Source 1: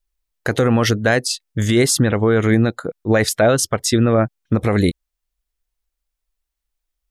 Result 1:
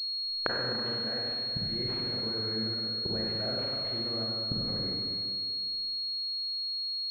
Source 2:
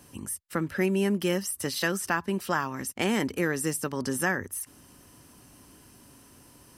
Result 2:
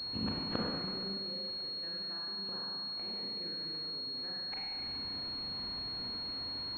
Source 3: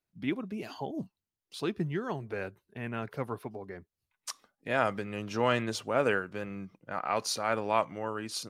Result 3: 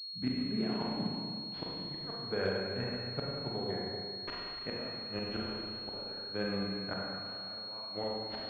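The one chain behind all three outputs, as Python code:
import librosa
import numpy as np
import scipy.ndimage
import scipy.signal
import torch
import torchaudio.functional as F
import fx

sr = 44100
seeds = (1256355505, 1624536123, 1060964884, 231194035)

y = fx.gate_flip(x, sr, shuts_db=-24.0, range_db=-27)
y = fx.rev_schroeder(y, sr, rt60_s=2.2, comb_ms=32, drr_db=-4.5)
y = fx.pwm(y, sr, carrier_hz=4300.0)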